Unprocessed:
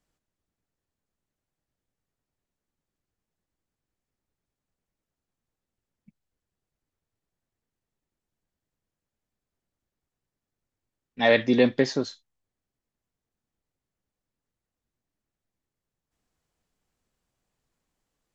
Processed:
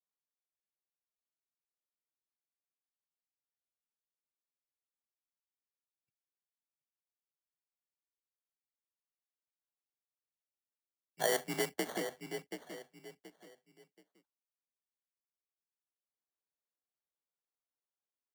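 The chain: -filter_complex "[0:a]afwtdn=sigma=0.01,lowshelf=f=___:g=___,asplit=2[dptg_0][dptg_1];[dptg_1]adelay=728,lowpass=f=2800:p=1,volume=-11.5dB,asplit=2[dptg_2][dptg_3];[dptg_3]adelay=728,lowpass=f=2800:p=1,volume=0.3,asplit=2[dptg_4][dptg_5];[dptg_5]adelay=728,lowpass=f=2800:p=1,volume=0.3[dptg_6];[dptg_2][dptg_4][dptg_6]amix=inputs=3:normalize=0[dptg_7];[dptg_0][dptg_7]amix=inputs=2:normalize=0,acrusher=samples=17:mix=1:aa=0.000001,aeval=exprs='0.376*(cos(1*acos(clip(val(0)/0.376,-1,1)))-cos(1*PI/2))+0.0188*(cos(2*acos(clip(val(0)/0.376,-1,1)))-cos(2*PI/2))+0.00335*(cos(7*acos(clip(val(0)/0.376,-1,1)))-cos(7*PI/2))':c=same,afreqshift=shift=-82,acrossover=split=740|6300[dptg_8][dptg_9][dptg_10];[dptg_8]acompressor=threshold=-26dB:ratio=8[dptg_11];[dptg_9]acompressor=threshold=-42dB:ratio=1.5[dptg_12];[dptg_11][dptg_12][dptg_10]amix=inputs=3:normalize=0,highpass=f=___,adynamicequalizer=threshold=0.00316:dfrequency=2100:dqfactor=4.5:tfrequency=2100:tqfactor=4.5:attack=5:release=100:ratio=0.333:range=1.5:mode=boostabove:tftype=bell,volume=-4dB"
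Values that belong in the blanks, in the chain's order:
410, -8, 290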